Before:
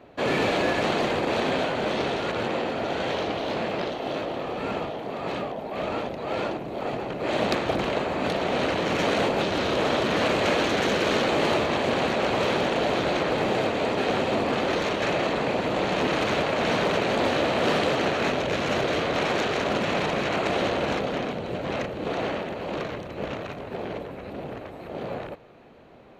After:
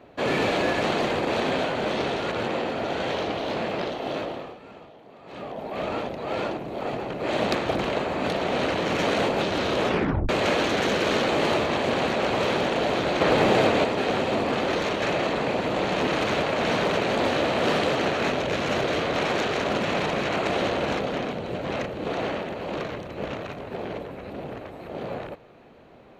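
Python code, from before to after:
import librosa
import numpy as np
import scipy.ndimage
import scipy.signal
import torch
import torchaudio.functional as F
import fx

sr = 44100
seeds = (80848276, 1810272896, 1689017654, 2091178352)

y = fx.edit(x, sr, fx.fade_down_up(start_s=4.23, length_s=1.4, db=-16.0, fade_s=0.36),
    fx.tape_stop(start_s=9.84, length_s=0.45),
    fx.clip_gain(start_s=13.21, length_s=0.63, db=5.0), tone=tone)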